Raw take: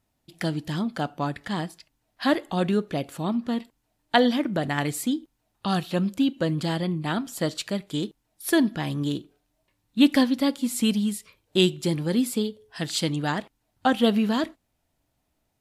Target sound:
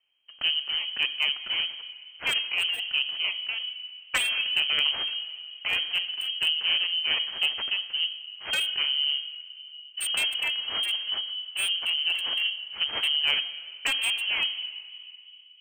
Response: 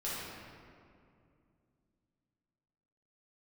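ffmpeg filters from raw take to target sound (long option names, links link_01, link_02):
-filter_complex "[0:a]acrossover=split=390|1200[link_01][link_02][link_03];[link_03]aeval=exprs='abs(val(0))':channel_layout=same[link_04];[link_01][link_02][link_04]amix=inputs=3:normalize=0,highshelf=frequency=2500:gain=9,asplit=2[link_05][link_06];[1:a]atrim=start_sample=2205[link_07];[link_06][link_07]afir=irnorm=-1:irlink=0,volume=-16.5dB[link_08];[link_05][link_08]amix=inputs=2:normalize=0,lowpass=frequency=2700:width_type=q:width=0.5098,lowpass=frequency=2700:width_type=q:width=0.6013,lowpass=frequency=2700:width_type=q:width=0.9,lowpass=frequency=2700:width_type=q:width=2.563,afreqshift=-3200,volume=14.5dB,asoftclip=hard,volume=-14.5dB,afftfilt=real='re*lt(hypot(re,im),0.631)':imag='im*lt(hypot(re,im),0.631)':win_size=1024:overlap=0.75"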